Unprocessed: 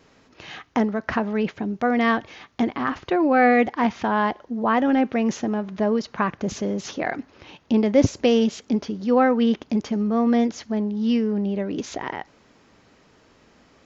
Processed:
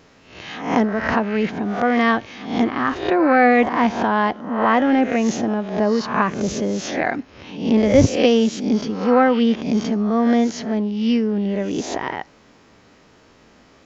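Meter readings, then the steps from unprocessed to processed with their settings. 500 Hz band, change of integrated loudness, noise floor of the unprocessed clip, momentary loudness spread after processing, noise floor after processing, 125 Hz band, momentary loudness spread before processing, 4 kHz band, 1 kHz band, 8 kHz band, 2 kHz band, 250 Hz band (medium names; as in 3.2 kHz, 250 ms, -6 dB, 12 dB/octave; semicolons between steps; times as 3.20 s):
+3.5 dB, +3.5 dB, -57 dBFS, 10 LU, -52 dBFS, +4.5 dB, 10 LU, +5.0 dB, +4.0 dB, no reading, +4.5 dB, +3.0 dB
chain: reverse spectral sustain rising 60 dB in 0.57 s; trim +2.5 dB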